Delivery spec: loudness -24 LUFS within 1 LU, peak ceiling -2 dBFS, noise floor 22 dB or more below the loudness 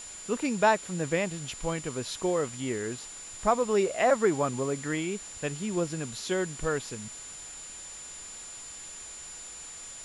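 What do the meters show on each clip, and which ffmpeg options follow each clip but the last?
steady tone 7100 Hz; tone level -42 dBFS; noise floor -44 dBFS; noise floor target -53 dBFS; loudness -31.0 LUFS; peak -12.0 dBFS; loudness target -24.0 LUFS
-> -af "bandreject=f=7.1k:w=30"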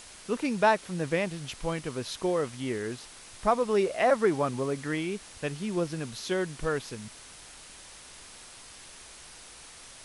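steady tone none; noise floor -49 dBFS; noise floor target -52 dBFS
-> -af "afftdn=nr=6:nf=-49"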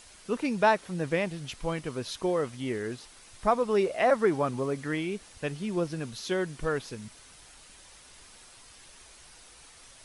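noise floor -53 dBFS; loudness -29.5 LUFS; peak -12.0 dBFS; loudness target -24.0 LUFS
-> -af "volume=5.5dB"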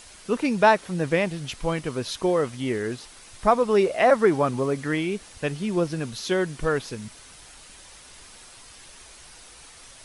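loudness -24.0 LUFS; peak -6.5 dBFS; noise floor -48 dBFS

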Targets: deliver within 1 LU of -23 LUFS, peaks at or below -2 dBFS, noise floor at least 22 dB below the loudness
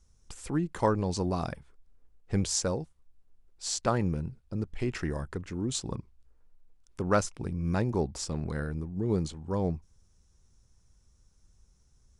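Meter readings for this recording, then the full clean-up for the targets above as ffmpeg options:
loudness -32.0 LUFS; peak -11.5 dBFS; loudness target -23.0 LUFS
-> -af "volume=9dB"

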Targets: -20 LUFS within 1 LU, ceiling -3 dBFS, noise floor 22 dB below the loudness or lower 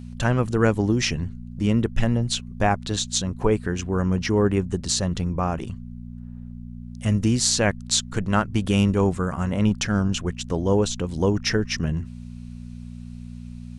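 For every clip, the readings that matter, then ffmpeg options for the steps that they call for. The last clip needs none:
hum 60 Hz; harmonics up to 240 Hz; hum level -34 dBFS; loudness -23.5 LUFS; peak -3.5 dBFS; loudness target -20.0 LUFS
-> -af "bandreject=f=60:t=h:w=4,bandreject=f=120:t=h:w=4,bandreject=f=180:t=h:w=4,bandreject=f=240:t=h:w=4"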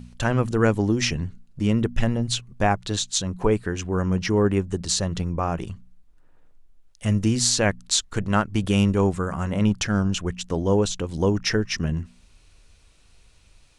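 hum none; loudness -23.5 LUFS; peak -4.0 dBFS; loudness target -20.0 LUFS
-> -af "volume=3.5dB,alimiter=limit=-3dB:level=0:latency=1"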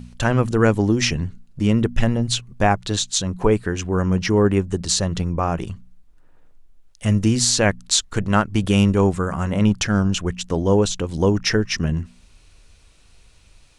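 loudness -20.0 LUFS; peak -3.0 dBFS; noise floor -52 dBFS

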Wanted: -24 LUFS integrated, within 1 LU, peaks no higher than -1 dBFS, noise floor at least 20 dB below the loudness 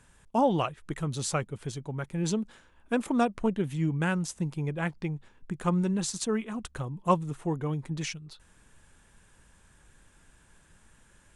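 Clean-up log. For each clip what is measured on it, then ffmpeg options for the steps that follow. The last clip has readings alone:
loudness -30.5 LUFS; peak -10.5 dBFS; loudness target -24.0 LUFS
-> -af "volume=6.5dB"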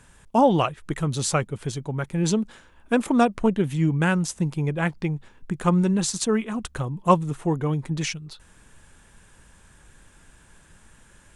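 loudness -24.0 LUFS; peak -4.0 dBFS; noise floor -55 dBFS

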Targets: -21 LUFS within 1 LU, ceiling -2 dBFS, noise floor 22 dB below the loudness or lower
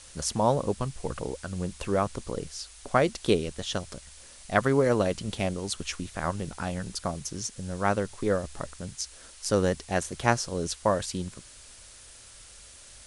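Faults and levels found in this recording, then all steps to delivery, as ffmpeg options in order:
noise floor -50 dBFS; noise floor target -52 dBFS; loudness -29.5 LUFS; peak -6.0 dBFS; loudness target -21.0 LUFS
-> -af "afftdn=nr=6:nf=-50"
-af "volume=8.5dB,alimiter=limit=-2dB:level=0:latency=1"

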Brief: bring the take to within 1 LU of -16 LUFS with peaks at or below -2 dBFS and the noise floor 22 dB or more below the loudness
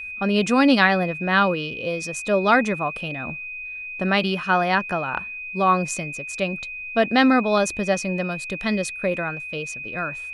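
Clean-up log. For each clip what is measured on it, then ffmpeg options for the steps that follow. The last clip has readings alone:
steady tone 2500 Hz; tone level -31 dBFS; loudness -22.0 LUFS; peak -3.0 dBFS; loudness target -16.0 LUFS
-> -af "bandreject=f=2.5k:w=30"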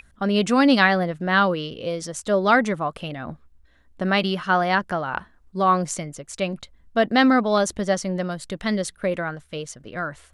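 steady tone none; loudness -22.0 LUFS; peak -3.0 dBFS; loudness target -16.0 LUFS
-> -af "volume=6dB,alimiter=limit=-2dB:level=0:latency=1"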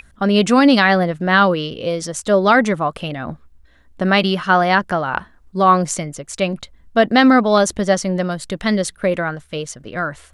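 loudness -16.5 LUFS; peak -2.0 dBFS; noise floor -51 dBFS

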